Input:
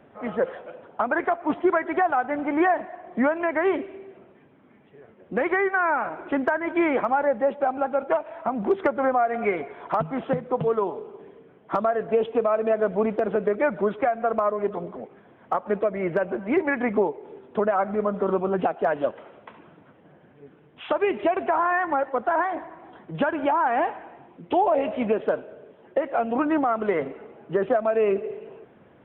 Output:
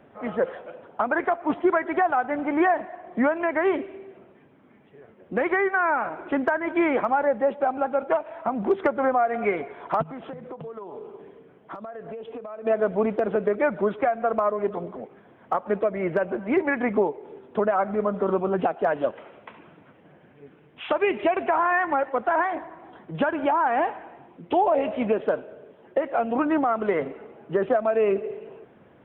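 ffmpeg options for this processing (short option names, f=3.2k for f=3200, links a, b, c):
-filter_complex "[0:a]asplit=3[a][b][c];[a]afade=t=out:st=10.02:d=0.02[d];[b]acompressor=threshold=-33dB:ratio=16:attack=3.2:release=140:knee=1:detection=peak,afade=t=in:st=10.02:d=0.02,afade=t=out:st=12.65:d=0.02[e];[c]afade=t=in:st=12.65:d=0.02[f];[d][e][f]amix=inputs=3:normalize=0,asettb=1/sr,asplit=3[g][h][i];[g]atrim=end=19.134[j];[h]atrim=start=19.13:end=22.58,asetpts=PTS-STARTPTS,afade=t=in:d=0.004:c=qsin,afade=t=out:st=3.446:d=0.004:c=qsin,equalizer=f=2.4k:t=o:w=0.77:g=4.5[k];[i]atrim=start=22.576[l];[j][k]acrossfade=d=0.004:c1=hsin:c2=qsin[m];[m][l]acrossfade=d=0.004:c1=qsin:c2=hsin"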